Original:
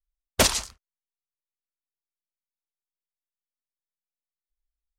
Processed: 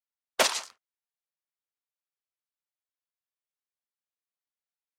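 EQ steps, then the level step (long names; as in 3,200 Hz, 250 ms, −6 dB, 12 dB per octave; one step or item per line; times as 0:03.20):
high-pass filter 530 Hz 12 dB per octave
high-shelf EQ 5,000 Hz −9 dB
0.0 dB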